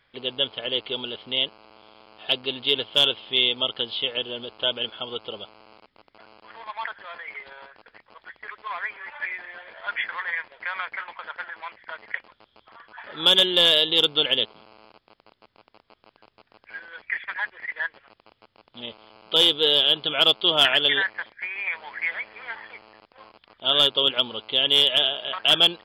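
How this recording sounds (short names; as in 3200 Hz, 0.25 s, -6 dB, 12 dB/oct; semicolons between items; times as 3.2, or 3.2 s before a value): noise floor -71 dBFS; spectral tilt +1.5 dB/oct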